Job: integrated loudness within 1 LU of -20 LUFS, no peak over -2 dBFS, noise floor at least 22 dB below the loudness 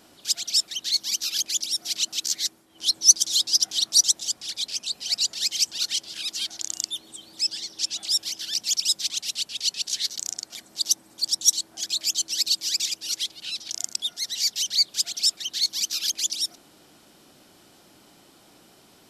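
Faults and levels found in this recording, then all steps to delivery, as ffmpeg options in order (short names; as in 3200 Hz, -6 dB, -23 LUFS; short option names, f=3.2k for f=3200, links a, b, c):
loudness -23.5 LUFS; peak -2.0 dBFS; loudness target -20.0 LUFS
-> -af "volume=3.5dB,alimiter=limit=-2dB:level=0:latency=1"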